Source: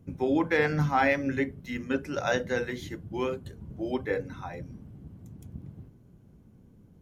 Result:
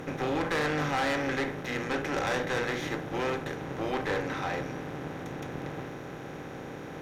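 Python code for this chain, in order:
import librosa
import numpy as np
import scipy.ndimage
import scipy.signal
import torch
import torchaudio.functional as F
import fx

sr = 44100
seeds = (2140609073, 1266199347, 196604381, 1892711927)

y = fx.bin_compress(x, sr, power=0.4)
y = fx.low_shelf(y, sr, hz=360.0, db=-6.5)
y = fx.tube_stage(y, sr, drive_db=24.0, bias=0.65)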